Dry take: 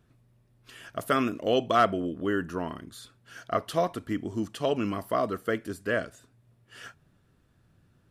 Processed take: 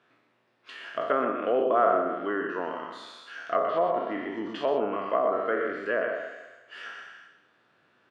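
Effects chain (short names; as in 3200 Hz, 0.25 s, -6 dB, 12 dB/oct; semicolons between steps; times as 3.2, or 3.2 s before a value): spectral trails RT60 0.98 s; treble ducked by the level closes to 1100 Hz, closed at -19.5 dBFS; BPF 380–2700 Hz; echo 0.122 s -6.5 dB; mismatched tape noise reduction encoder only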